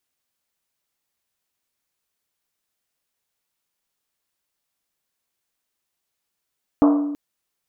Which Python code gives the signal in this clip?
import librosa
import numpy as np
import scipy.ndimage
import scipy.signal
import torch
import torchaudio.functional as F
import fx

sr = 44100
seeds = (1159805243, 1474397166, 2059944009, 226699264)

y = fx.risset_drum(sr, seeds[0], length_s=0.33, hz=290.0, decay_s=1.24, noise_hz=860.0, noise_width_hz=690.0, noise_pct=15)